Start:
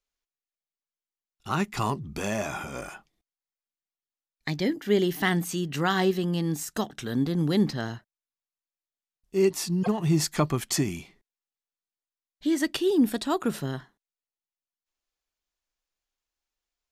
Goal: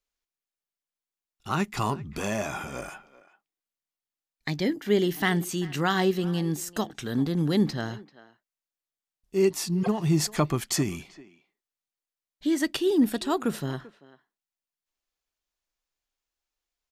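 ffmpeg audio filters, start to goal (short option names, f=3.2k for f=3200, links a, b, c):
-filter_complex "[0:a]asplit=2[a][b];[b]adelay=390,highpass=300,lowpass=3.4k,asoftclip=type=hard:threshold=-19.5dB,volume=-18dB[c];[a][c]amix=inputs=2:normalize=0"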